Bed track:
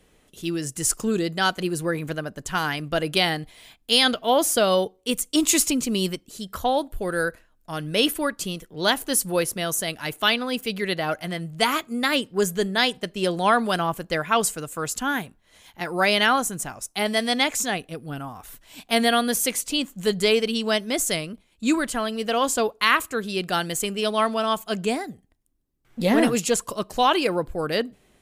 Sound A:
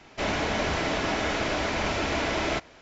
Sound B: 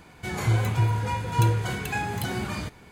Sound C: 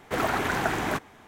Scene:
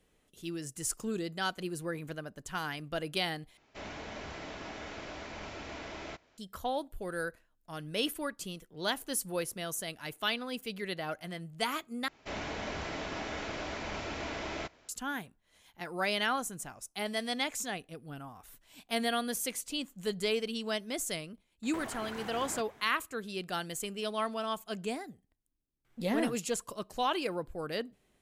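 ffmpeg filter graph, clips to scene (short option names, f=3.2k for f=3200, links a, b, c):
-filter_complex "[1:a]asplit=2[a][b];[0:a]volume=-11.5dB[c];[3:a]acompressor=threshold=-34dB:ratio=6:attack=3.2:release=140:knee=1:detection=peak[d];[c]asplit=3[e][f][g];[e]atrim=end=3.574[h];[a]atrim=end=2.81,asetpts=PTS-STARTPTS,volume=-16dB[i];[f]atrim=start=6.376:end=12.084[j];[b]atrim=end=2.81,asetpts=PTS-STARTPTS,volume=-11dB[k];[g]atrim=start=14.886[l];[d]atrim=end=1.27,asetpts=PTS-STARTPTS,volume=-6dB,afade=t=in:d=0.004:c=hsin,afade=t=out:st=1.266:d=0.004:c=hsin,adelay=21630[m];[h][i]acrossfade=d=0.004:c1=hsin:c2=hsin[n];[n][j]acrossfade=d=0.004:c1=hsin:c2=hsin[o];[o][k]acrossfade=d=0.004:c1=hsin:c2=hsin[p];[p][l]acrossfade=d=0.004:c1=hsin:c2=hsin[q];[q][m]amix=inputs=2:normalize=0"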